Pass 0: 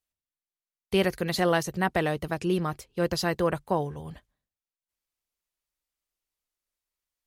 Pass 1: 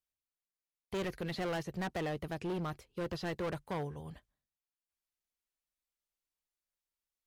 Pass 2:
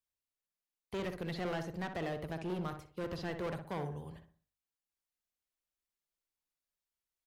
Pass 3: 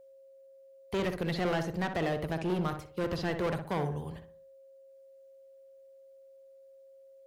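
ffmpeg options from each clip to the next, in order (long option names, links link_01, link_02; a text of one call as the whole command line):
ffmpeg -i in.wav -filter_complex "[0:a]acrossover=split=3700[link_01][link_02];[link_02]acompressor=threshold=-51dB:ratio=4:attack=1:release=60[link_03];[link_01][link_03]amix=inputs=2:normalize=0,asoftclip=type=hard:threshold=-26.5dB,volume=-6.5dB" out.wav
ffmpeg -i in.wav -filter_complex "[0:a]acrossover=split=160|4900[link_01][link_02][link_03];[link_03]alimiter=level_in=23.5dB:limit=-24dB:level=0:latency=1:release=33,volume=-23.5dB[link_04];[link_01][link_02][link_04]amix=inputs=3:normalize=0,asplit=2[link_05][link_06];[link_06]adelay=61,lowpass=frequency=1600:poles=1,volume=-6dB,asplit=2[link_07][link_08];[link_08]adelay=61,lowpass=frequency=1600:poles=1,volume=0.41,asplit=2[link_09][link_10];[link_10]adelay=61,lowpass=frequency=1600:poles=1,volume=0.41,asplit=2[link_11][link_12];[link_12]adelay=61,lowpass=frequency=1600:poles=1,volume=0.41,asplit=2[link_13][link_14];[link_14]adelay=61,lowpass=frequency=1600:poles=1,volume=0.41[link_15];[link_05][link_07][link_09][link_11][link_13][link_15]amix=inputs=6:normalize=0,volume=-2dB" out.wav
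ffmpeg -i in.wav -af "aeval=exprs='val(0)+0.001*sin(2*PI*540*n/s)':channel_layout=same,volume=7dB" out.wav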